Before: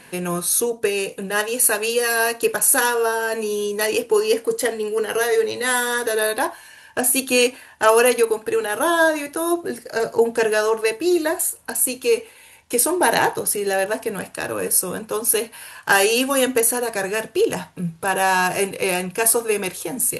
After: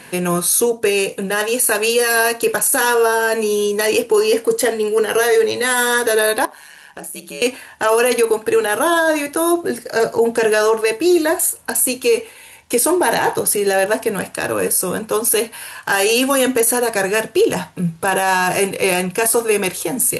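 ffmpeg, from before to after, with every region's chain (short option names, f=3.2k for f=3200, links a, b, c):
-filter_complex "[0:a]asettb=1/sr,asplit=3[a][b][c];[a]atrim=end=6.454[d];[b]atrim=start=6.45:end=7.42,asetpts=PTS-STARTPTS,afade=t=in:d=0.004:c=qsin,afade=t=out:st=0.966:d=0.004:c=qsin,acompressor=threshold=-39dB:ratio=2.5:attack=3.2:release=140:knee=1:detection=peak,aeval=exprs='val(0)*sin(2*PI*74*n/s)':c=same[e];[c]atrim=start=7.416[f];[d][e]acrossfade=d=0.004:c1=hsin:c2=qsin[g];[g][f]acrossfade=d=0.004:c1=qsin:c2=hsin,highpass=52,alimiter=limit=-12.5dB:level=0:latency=1:release=12,volume=6dB"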